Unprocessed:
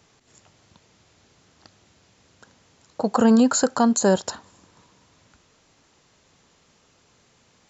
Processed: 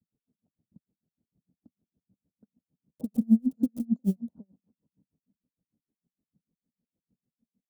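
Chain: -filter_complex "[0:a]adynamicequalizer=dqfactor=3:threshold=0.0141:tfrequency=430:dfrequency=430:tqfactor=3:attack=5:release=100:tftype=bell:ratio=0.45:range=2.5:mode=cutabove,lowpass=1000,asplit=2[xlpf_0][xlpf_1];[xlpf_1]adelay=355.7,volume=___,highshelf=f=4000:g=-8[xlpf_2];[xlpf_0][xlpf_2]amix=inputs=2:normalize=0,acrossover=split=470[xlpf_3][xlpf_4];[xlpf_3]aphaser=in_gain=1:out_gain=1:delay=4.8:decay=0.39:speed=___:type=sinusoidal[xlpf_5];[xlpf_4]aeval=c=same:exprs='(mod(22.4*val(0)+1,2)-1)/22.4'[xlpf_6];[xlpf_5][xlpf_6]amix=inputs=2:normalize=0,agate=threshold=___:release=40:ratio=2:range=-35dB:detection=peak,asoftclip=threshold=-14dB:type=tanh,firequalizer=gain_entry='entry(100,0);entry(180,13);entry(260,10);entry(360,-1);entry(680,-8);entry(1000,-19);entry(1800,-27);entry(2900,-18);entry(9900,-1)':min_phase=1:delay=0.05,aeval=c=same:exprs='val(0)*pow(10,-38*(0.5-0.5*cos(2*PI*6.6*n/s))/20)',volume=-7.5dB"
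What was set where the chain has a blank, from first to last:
-21dB, 1.4, -50dB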